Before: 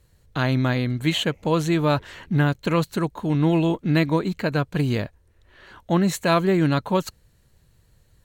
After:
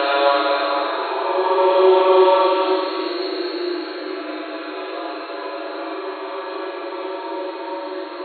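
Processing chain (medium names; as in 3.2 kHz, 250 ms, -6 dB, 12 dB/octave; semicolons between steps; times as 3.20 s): echo that smears into a reverb 522 ms, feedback 60%, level -13 dB; Paulstretch 9.6×, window 0.25 s, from 6.74 s; flutter echo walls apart 7.3 m, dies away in 0.54 s; FFT band-pass 300–4400 Hz; trim +6 dB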